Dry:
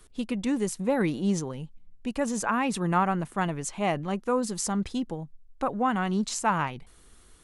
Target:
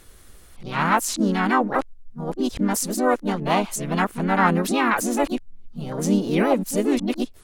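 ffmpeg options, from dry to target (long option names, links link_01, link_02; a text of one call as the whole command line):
ffmpeg -i in.wav -filter_complex "[0:a]areverse,asplit=3[link_01][link_02][link_03];[link_02]asetrate=52444,aresample=44100,atempo=0.840896,volume=-6dB[link_04];[link_03]asetrate=66075,aresample=44100,atempo=0.66742,volume=-5dB[link_05];[link_01][link_04][link_05]amix=inputs=3:normalize=0,volume=4dB" out.wav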